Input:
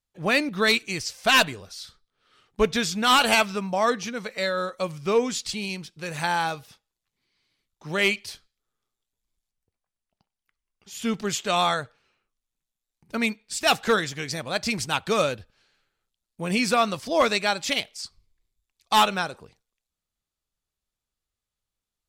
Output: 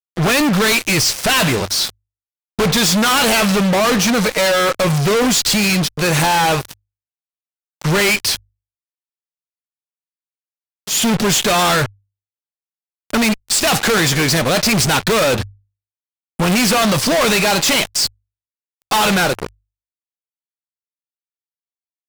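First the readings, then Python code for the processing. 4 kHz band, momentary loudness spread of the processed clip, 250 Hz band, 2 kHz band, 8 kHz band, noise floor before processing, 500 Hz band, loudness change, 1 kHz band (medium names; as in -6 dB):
+9.5 dB, 7 LU, +12.0 dB, +8.0 dB, +15.5 dB, under -85 dBFS, +8.0 dB, +9.0 dB, +6.5 dB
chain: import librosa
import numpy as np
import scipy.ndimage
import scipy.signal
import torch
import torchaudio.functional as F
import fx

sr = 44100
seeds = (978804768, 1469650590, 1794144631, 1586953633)

y = fx.fuzz(x, sr, gain_db=46.0, gate_db=-45.0)
y = fx.hum_notches(y, sr, base_hz=50, count=2)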